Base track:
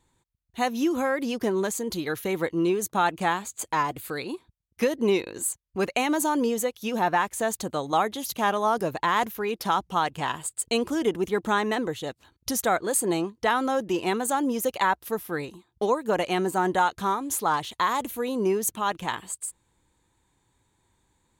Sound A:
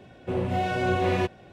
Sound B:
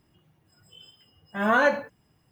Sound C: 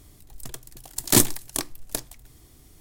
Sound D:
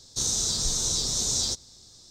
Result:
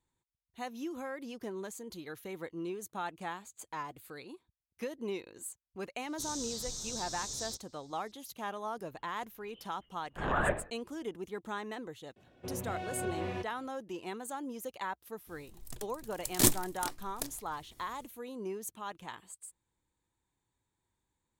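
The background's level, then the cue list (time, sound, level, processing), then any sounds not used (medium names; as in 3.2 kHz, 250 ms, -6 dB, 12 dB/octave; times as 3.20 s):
base track -15 dB
6.02 s: add D -14 dB
8.82 s: add B -9.5 dB + LPC vocoder at 8 kHz whisper
12.16 s: add A -13 dB
15.27 s: add C -5.5 dB + random flutter of the level 10 Hz, depth 60%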